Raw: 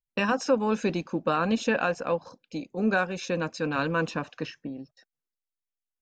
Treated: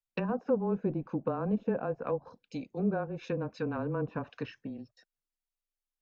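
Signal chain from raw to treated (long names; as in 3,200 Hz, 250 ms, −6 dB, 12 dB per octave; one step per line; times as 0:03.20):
frequency shifter −19 Hz
treble cut that deepens with the level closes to 690 Hz, closed at −24 dBFS
level −4 dB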